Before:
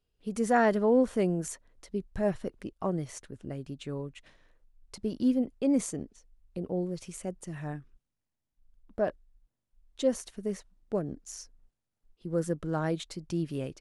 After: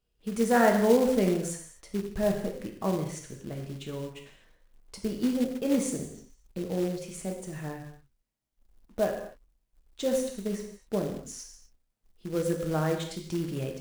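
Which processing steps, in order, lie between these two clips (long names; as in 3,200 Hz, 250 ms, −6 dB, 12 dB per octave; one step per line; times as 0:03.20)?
reverb whose tail is shaped and stops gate 280 ms falling, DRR 1.5 dB
floating-point word with a short mantissa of 2 bits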